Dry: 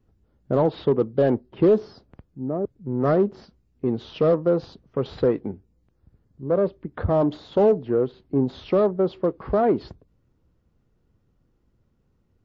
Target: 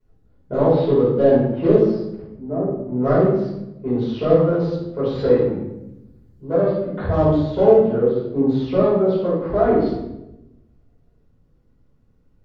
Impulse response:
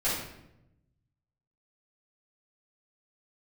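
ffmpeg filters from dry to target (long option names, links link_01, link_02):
-filter_complex "[0:a]asettb=1/sr,asplit=3[link_01][link_02][link_03];[link_01]atrim=end=5.154[link_04];[link_02]atrim=start=5.15:end=7.32,asetpts=PTS-STARTPTS,afade=type=in:duration=0.004:curve=qsin,afade=type=out:start_time=2.166:duration=0.004:curve=qsin,highshelf=frequency=3300:gain=8.5[link_05];[link_03]atrim=start=7.316[link_06];[link_04][link_05]acrossfade=duration=0.004:curve1=hsin:curve2=qsin[link_07];[link_07][link_06]acrossfade=duration=0.004:curve1=qsin:curve2=hsin[link_08];[1:a]atrim=start_sample=2205,asetrate=40131,aresample=44100[link_09];[link_08][link_09]afir=irnorm=-1:irlink=0,volume=-7dB"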